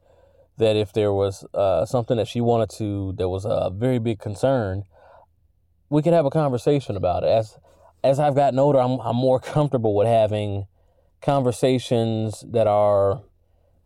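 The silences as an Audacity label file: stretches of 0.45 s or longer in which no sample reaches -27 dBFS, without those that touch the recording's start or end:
4.810000	5.910000	silence
7.430000	8.040000	silence
10.620000	11.240000	silence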